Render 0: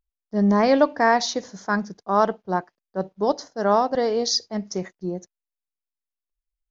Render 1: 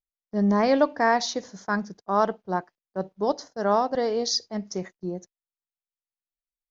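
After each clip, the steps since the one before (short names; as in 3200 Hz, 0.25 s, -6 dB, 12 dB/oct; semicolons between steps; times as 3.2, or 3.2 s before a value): gate -43 dBFS, range -14 dB; gain -3 dB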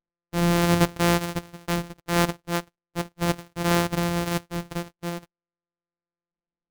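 sample sorter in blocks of 256 samples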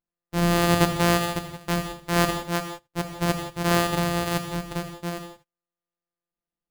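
non-linear reverb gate 0.2 s flat, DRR 5.5 dB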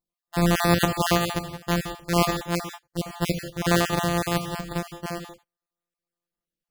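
random spectral dropouts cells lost 28%; gain +1.5 dB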